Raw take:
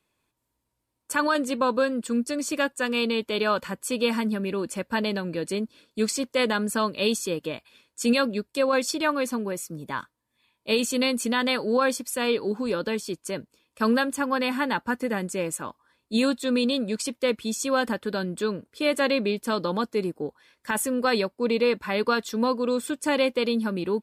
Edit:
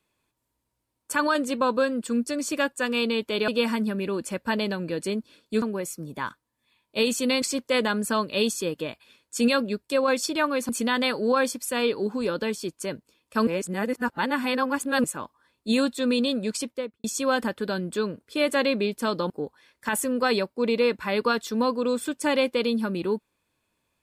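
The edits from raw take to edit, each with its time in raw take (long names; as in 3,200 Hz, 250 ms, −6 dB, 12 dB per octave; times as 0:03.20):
0:03.48–0:03.93: remove
0:09.34–0:11.14: move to 0:06.07
0:13.92–0:15.49: reverse
0:17.02–0:17.49: fade out and dull
0:19.75–0:20.12: remove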